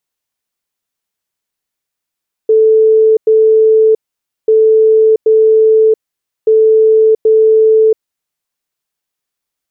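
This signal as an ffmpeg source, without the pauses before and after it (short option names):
-f lavfi -i "aevalsrc='0.596*sin(2*PI*439*t)*clip(min(mod(mod(t,1.99),0.78),0.68-mod(mod(t,1.99),0.78))/0.005,0,1)*lt(mod(t,1.99),1.56)':d=5.97:s=44100"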